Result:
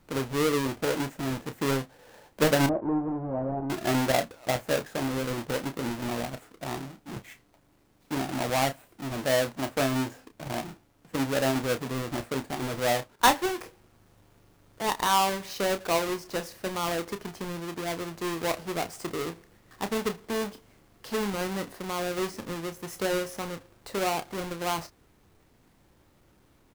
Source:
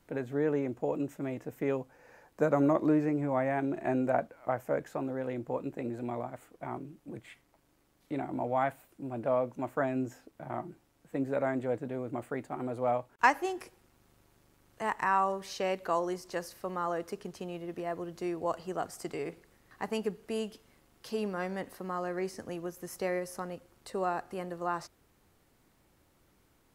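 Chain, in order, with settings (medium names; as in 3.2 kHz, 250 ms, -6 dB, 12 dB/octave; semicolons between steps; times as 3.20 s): square wave that keeps the level; 2.66–3.70 s: four-pole ladder low-pass 1 kHz, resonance 25%; doubling 30 ms -9.5 dB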